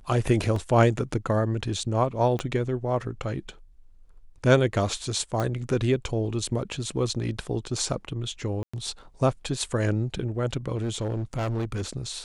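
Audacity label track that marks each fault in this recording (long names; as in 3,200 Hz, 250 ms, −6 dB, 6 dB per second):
0.560000	0.560000	drop-out 3.1 ms
2.390000	2.390000	click −17 dBFS
5.400000	5.400000	click −15 dBFS
8.630000	8.730000	drop-out 105 ms
10.750000	11.830000	clipping −24 dBFS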